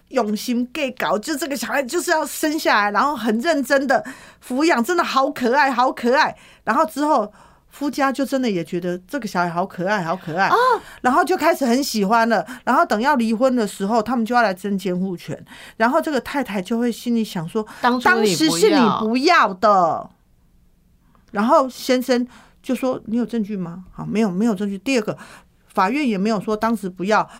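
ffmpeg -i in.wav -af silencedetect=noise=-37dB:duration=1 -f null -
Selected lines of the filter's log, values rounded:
silence_start: 20.06
silence_end: 21.29 | silence_duration: 1.23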